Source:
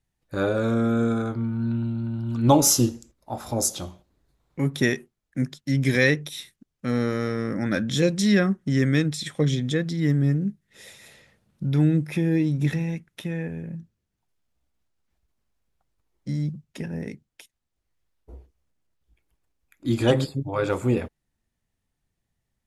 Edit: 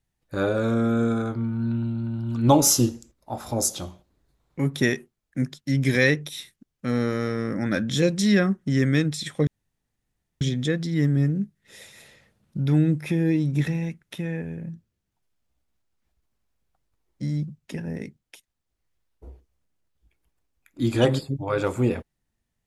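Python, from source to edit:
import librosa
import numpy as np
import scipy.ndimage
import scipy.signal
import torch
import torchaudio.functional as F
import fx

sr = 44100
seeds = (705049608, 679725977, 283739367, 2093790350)

y = fx.edit(x, sr, fx.insert_room_tone(at_s=9.47, length_s=0.94), tone=tone)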